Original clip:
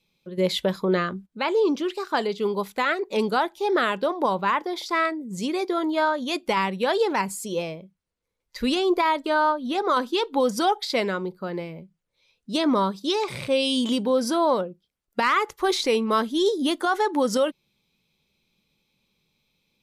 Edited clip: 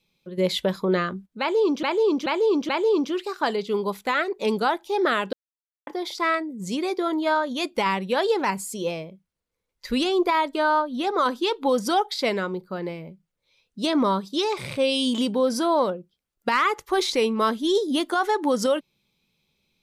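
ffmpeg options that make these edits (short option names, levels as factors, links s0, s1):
-filter_complex "[0:a]asplit=6[s0][s1][s2][s3][s4][s5];[s0]atrim=end=1.832[s6];[s1]atrim=start=1.398:end=1.832[s7];[s2]atrim=start=1.398:end=1.832[s8];[s3]atrim=start=1.398:end=4.04,asetpts=PTS-STARTPTS,afade=t=out:st=2.638:d=0.004:c=hsin[s9];[s4]atrim=start=4.04:end=4.58,asetpts=PTS-STARTPTS,volume=0[s10];[s5]atrim=start=4.58,asetpts=PTS-STARTPTS,afade=t=in:d=0.004:c=hsin[s11];[s6][s7]acrossfade=d=0.004:c1=hsin:c2=hsin[s12];[s12][s8]acrossfade=d=0.004:c1=hsin:c2=hsin[s13];[s9][s10][s11]concat=n=3:v=0:a=1[s14];[s13][s14]acrossfade=d=0.004:c1=hsin:c2=hsin"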